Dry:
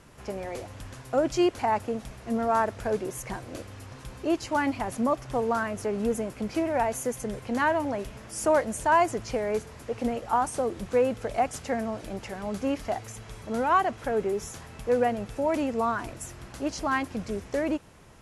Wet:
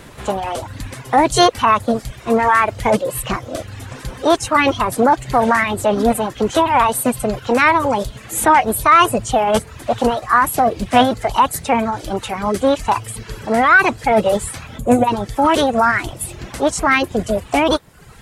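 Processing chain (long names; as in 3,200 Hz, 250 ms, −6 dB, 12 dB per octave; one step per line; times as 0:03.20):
reverb reduction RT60 0.88 s
gain on a spectral selection 0:14.79–0:15.07, 570–4,800 Hz −17 dB
formants moved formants +5 semitones
in parallel at +2.5 dB: brickwall limiter −20.5 dBFS, peak gain reduction 8.5 dB
on the sum: level +7 dB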